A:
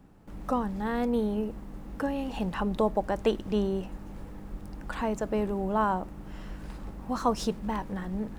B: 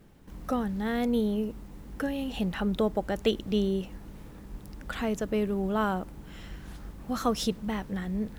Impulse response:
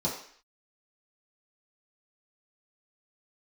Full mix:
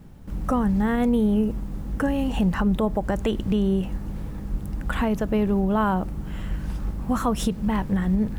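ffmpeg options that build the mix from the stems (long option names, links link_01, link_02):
-filter_complex "[0:a]volume=2.5dB[link_01];[1:a]bass=frequency=250:gain=12,treble=frequency=4000:gain=3,volume=0.5dB[link_02];[link_01][link_02]amix=inputs=2:normalize=0,alimiter=limit=-13.5dB:level=0:latency=1:release=114"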